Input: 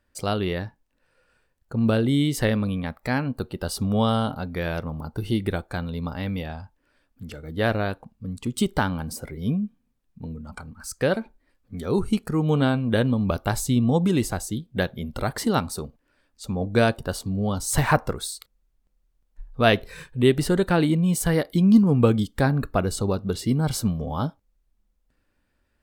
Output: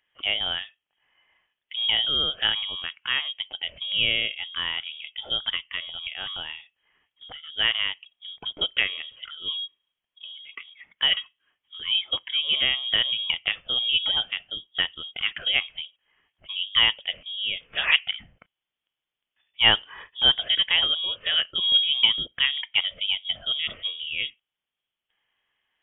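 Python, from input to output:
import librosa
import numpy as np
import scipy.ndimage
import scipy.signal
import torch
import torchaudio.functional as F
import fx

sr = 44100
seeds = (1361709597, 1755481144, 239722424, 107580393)

y = scipy.signal.sosfilt(scipy.signal.butter(2, 300.0, 'highpass', fs=sr, output='sos'), x)
y = fx.freq_invert(y, sr, carrier_hz=3500)
y = y * librosa.db_to_amplitude(1.0)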